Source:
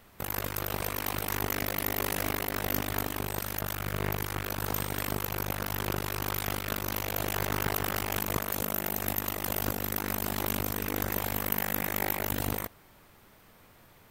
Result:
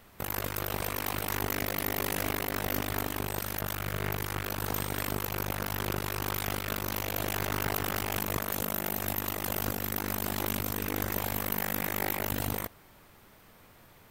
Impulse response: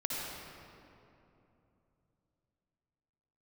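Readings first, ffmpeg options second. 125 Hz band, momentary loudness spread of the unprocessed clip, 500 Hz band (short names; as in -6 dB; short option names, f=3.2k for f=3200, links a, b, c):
-0.5 dB, 3 LU, -0.5 dB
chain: -af "acontrast=53,aeval=exprs='(tanh(5.62*val(0)+0.3)-tanh(0.3))/5.62':c=same,volume=-4.5dB"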